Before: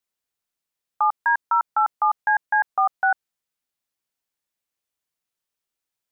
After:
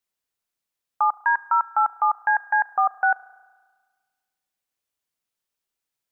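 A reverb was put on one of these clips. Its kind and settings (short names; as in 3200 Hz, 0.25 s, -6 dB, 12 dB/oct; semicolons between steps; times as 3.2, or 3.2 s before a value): spring tank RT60 1.5 s, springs 33 ms, chirp 65 ms, DRR 17.5 dB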